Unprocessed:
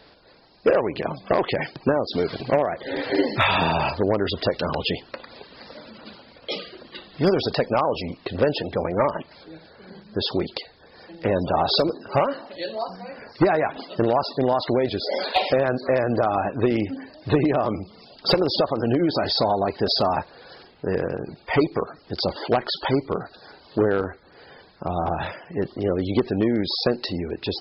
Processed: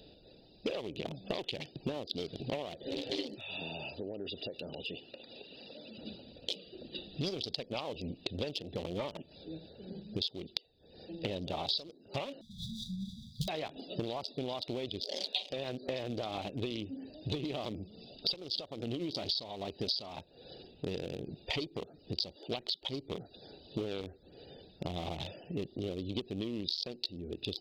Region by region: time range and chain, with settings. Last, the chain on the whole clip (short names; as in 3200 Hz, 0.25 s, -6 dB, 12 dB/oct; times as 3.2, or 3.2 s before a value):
3.35–5.98 HPF 330 Hz 6 dB/oct + bell 2800 Hz +7.5 dB 0.23 oct + compressor 2:1, threshold -41 dBFS
12.41–13.48 half-waves squared off + brick-wall FIR band-stop 230–3200 Hz + high shelf 4900 Hz -8 dB
whole clip: Wiener smoothing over 41 samples; resonant high shelf 2300 Hz +13.5 dB, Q 3; compressor 6:1, threshold -35 dBFS